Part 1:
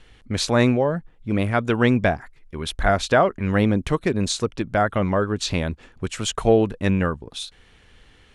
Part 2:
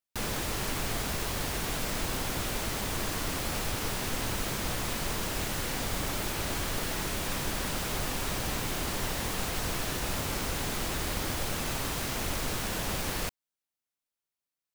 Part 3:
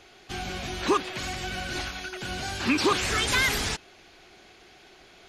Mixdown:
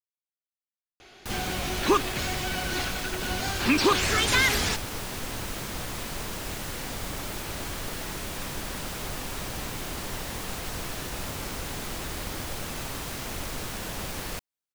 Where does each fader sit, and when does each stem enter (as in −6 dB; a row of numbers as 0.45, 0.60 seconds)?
muted, −2.0 dB, +1.5 dB; muted, 1.10 s, 1.00 s